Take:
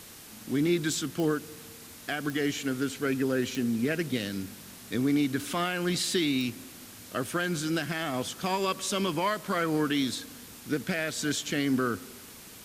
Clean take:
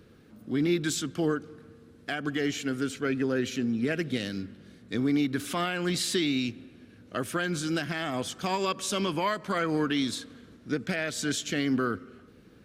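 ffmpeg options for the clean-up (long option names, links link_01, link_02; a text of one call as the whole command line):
ffmpeg -i in.wav -af "adeclick=threshold=4,afwtdn=0.0045" out.wav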